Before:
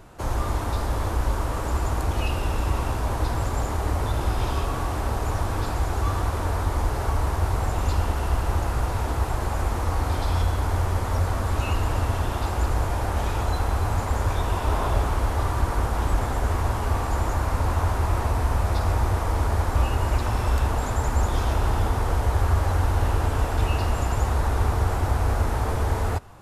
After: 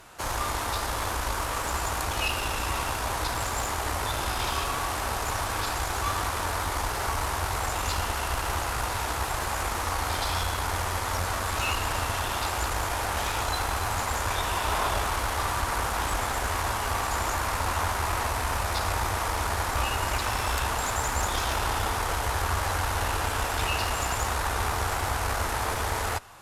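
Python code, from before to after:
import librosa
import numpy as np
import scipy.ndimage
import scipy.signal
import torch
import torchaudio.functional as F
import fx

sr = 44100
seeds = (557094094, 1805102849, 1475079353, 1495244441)

y = fx.tilt_shelf(x, sr, db=-8.5, hz=690.0)
y = fx.cheby_harmonics(y, sr, harmonics=(6, 8), levels_db=(-22, -43), full_scale_db=-12.5)
y = F.gain(torch.from_numpy(y), -1.5).numpy()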